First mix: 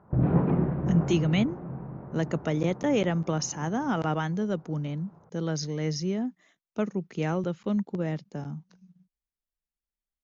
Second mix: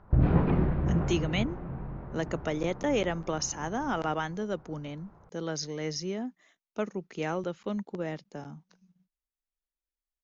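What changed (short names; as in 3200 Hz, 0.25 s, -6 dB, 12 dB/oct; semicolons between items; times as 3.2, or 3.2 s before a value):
background: remove band-pass 620 Hz, Q 0.54; master: add bell 140 Hz -9.5 dB 1.8 oct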